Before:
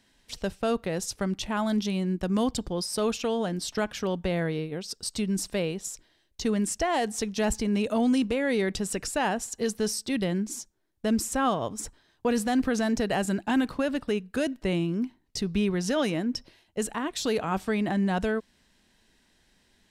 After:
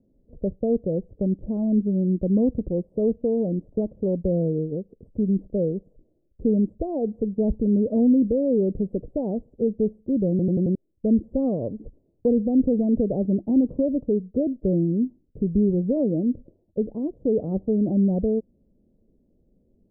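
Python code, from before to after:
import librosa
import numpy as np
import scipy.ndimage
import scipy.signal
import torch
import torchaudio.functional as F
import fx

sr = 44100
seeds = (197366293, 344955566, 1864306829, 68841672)

y = fx.edit(x, sr, fx.stutter_over(start_s=10.3, slice_s=0.09, count=5), tone=tone)
y = scipy.signal.sosfilt(scipy.signal.ellip(4, 1.0, 70, 550.0, 'lowpass', fs=sr, output='sos'), y)
y = y * librosa.db_to_amplitude(6.0)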